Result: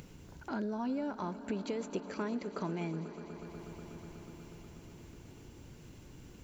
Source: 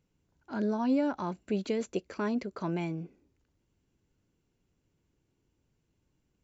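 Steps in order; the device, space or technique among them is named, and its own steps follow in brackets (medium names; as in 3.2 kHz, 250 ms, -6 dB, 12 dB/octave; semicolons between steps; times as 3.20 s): upward and downward compression (upward compressor, threshold -41 dBFS; compression 4:1, threshold -40 dBFS, peak gain reduction 14 dB); echo with a slow build-up 122 ms, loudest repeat 5, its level -18 dB; trim +4.5 dB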